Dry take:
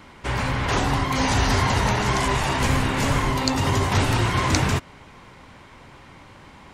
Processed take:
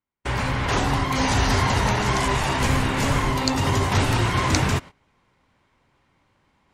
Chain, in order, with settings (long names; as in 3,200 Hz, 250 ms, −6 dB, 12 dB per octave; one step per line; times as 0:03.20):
noise gate −32 dBFS, range −45 dB
reversed playback
upward compression, threshold −43 dBFS
reversed playback